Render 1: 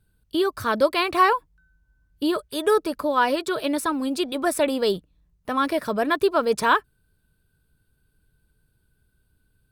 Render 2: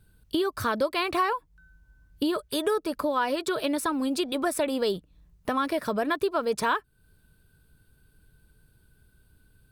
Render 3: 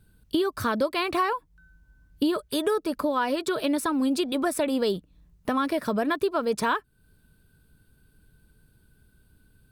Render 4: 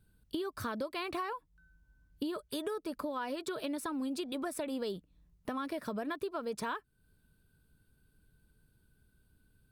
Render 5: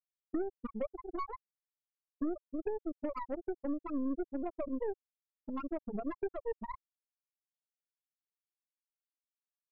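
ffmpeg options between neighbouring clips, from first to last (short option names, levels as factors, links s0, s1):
-af "acompressor=threshold=0.0224:ratio=3,volume=2"
-af "equalizer=f=230:w=1.5:g=4.5"
-af "acompressor=threshold=0.0501:ratio=2.5,volume=0.376"
-af "afftfilt=real='re*gte(hypot(re,im),0.112)':imag='im*gte(hypot(re,im),0.112)':win_size=1024:overlap=0.75,aeval=exprs='0.0398*(cos(1*acos(clip(val(0)/0.0398,-1,1)))-cos(1*PI/2))+0.00501*(cos(6*acos(clip(val(0)/0.0398,-1,1)))-cos(6*PI/2))':c=same,highshelf=f=2100:g=-11,volume=1.33"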